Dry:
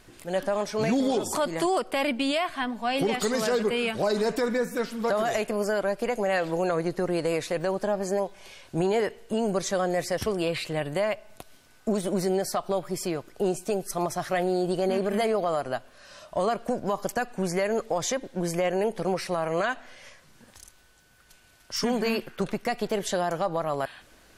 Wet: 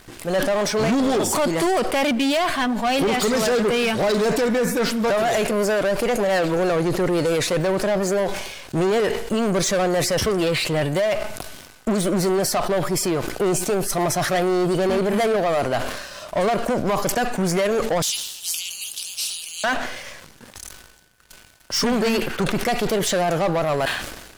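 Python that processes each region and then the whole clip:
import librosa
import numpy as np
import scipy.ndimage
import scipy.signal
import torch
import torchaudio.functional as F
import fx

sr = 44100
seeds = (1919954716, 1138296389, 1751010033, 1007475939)

y = fx.chain(x, sr, fx.steep_highpass(hz=2800.0, slope=96),
    fx.doubler(ms=12.0, db=-12.0),
    fx.spectral_comp(ratio=2.0), at=(18.02, 19.64))
y = fx.leveller(y, sr, passes=3)
y = fx.sustainer(y, sr, db_per_s=52.0)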